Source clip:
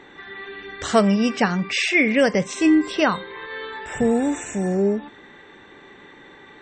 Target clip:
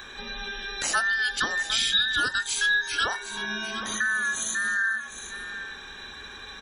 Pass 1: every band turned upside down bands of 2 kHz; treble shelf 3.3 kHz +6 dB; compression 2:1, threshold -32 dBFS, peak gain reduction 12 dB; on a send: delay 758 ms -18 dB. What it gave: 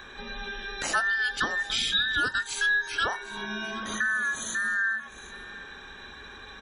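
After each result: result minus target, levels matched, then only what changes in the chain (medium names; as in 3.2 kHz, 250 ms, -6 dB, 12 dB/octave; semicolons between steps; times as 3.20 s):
8 kHz band -4.5 dB; echo-to-direct -6.5 dB
change: treble shelf 3.3 kHz +16 dB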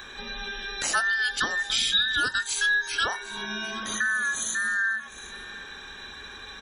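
echo-to-direct -6.5 dB
change: delay 758 ms -11.5 dB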